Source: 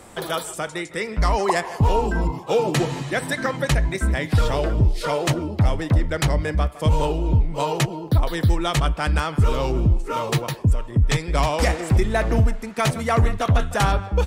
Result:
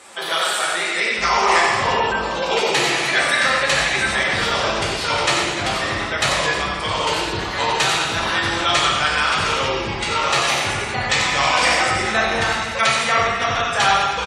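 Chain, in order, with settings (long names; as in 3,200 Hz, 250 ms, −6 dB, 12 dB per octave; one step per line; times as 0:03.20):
delay with pitch and tempo change per echo 122 ms, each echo +2 semitones, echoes 3, each echo −6 dB
resonant band-pass 3,300 Hz, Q 0.53
single-tap delay 92 ms −6.5 dB
reverb whose tail is shaped and stops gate 450 ms falling, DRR −4.5 dB
gate on every frequency bin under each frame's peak −30 dB strong
level +5 dB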